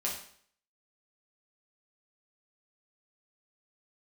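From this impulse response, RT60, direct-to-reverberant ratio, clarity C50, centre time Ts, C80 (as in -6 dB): 0.55 s, -5.0 dB, 5.0 dB, 32 ms, 9.0 dB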